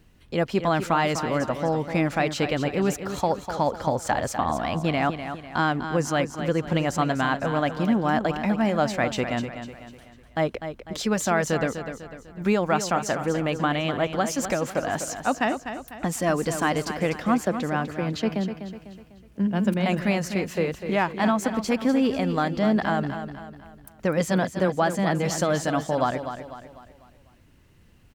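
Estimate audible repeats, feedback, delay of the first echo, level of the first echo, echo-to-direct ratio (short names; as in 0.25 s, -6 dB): 4, 43%, 0.249 s, -9.5 dB, -8.5 dB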